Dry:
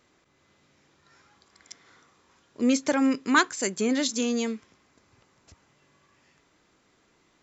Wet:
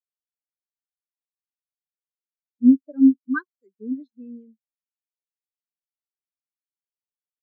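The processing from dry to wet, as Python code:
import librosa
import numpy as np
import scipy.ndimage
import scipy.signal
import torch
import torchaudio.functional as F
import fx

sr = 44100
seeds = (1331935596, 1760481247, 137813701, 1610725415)

y = scipy.signal.sosfilt(scipy.signal.butter(2, 4900.0, 'lowpass', fs=sr, output='sos'), x)
y = fx.high_shelf(y, sr, hz=2500.0, db=7.0)
y = fx.spectral_expand(y, sr, expansion=4.0)
y = y * librosa.db_to_amplitude(1.5)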